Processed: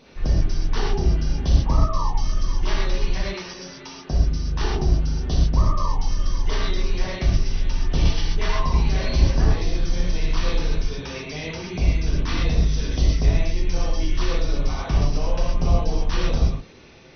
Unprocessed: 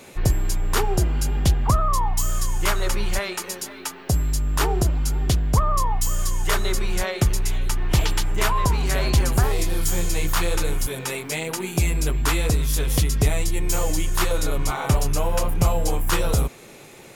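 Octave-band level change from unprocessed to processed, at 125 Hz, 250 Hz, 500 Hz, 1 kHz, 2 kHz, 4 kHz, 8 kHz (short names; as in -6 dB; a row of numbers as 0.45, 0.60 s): 0.0, 0.0, -3.0, -5.0, -4.5, -2.0, -12.0 dB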